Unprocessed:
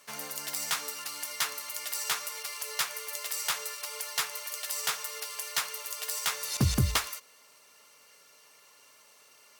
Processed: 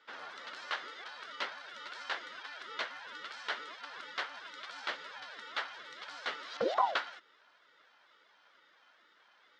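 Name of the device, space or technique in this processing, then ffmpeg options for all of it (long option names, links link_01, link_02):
voice changer toy: -af "aeval=exprs='val(0)*sin(2*PI*600*n/s+600*0.5/2.2*sin(2*PI*2.2*n/s))':channel_layout=same,highpass=490,equalizer=frequency=750:width_type=q:width=4:gain=-3,equalizer=frequency=1400:width_type=q:width=4:gain=5,equalizer=frequency=2500:width_type=q:width=4:gain=-8,lowpass=frequency=3500:width=0.5412,lowpass=frequency=3500:width=1.3066,volume=1dB"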